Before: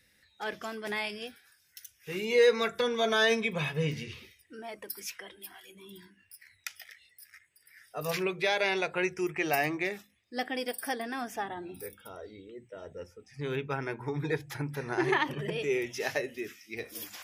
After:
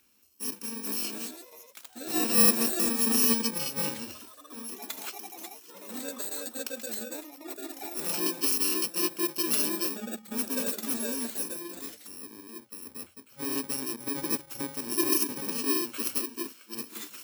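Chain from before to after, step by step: bit-reversed sample order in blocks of 64 samples; ever faster or slower copies 570 ms, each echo +7 st, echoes 3, each echo -6 dB; resonant low shelf 190 Hz -7.5 dB, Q 3; trim +1 dB

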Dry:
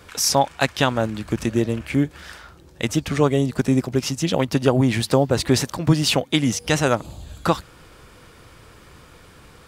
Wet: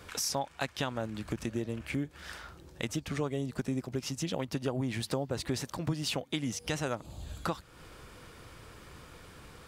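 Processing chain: compression 2.5:1, threshold -31 dBFS, peak gain reduction 13.5 dB; trim -4 dB

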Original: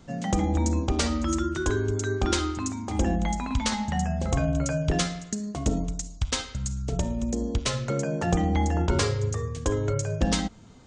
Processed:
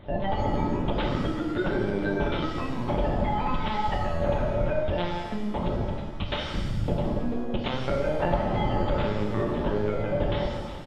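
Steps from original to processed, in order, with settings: on a send: feedback delay 176 ms, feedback 50%, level -19 dB; on the sum: compression 6:1, threshold -29 dBFS, peak gain reduction 11 dB; LPC vocoder at 8 kHz pitch kept; hum notches 60/120 Hz; small resonant body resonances 580/860 Hz, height 13 dB, ringing for 85 ms; reverse; upward compressor, threshold -39 dBFS; reverse; pitch-shifted reverb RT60 1.1 s, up +7 st, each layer -8 dB, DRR 2.5 dB; trim +3.5 dB

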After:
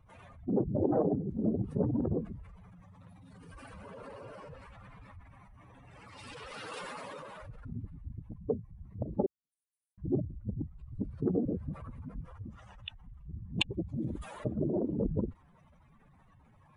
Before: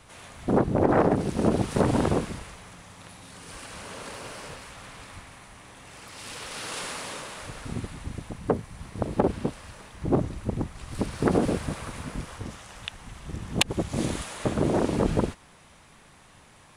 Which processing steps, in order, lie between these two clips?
spectral contrast enhancement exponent 2.5; 9.26–9.98 s: inverse Chebyshev high-pass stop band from 2.4 kHz, stop band 70 dB; trim -7 dB

